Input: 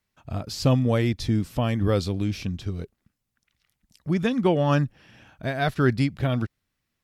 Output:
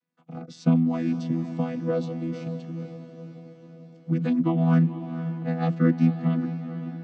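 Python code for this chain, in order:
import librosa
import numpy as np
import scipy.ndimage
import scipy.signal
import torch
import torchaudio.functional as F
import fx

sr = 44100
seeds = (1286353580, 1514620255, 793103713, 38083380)

y = fx.chord_vocoder(x, sr, chord='bare fifth', root=52)
y = fx.echo_diffused(y, sr, ms=486, feedback_pct=58, wet_db=-11)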